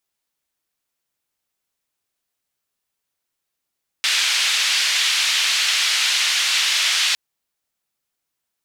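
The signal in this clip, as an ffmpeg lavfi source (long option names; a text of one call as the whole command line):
ffmpeg -f lavfi -i "anoisesrc=color=white:duration=3.11:sample_rate=44100:seed=1,highpass=frequency=2500,lowpass=frequency=3700,volume=-2.8dB" out.wav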